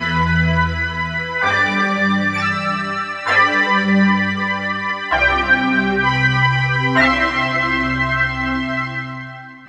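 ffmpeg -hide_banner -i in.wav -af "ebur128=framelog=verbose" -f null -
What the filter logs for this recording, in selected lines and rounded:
Integrated loudness:
  I:         -16.3 LUFS
  Threshold: -26.4 LUFS
Loudness range:
  LRA:         2.0 LU
  Threshold: -36.0 LUFS
  LRA low:   -17.2 LUFS
  LRA high:  -15.2 LUFS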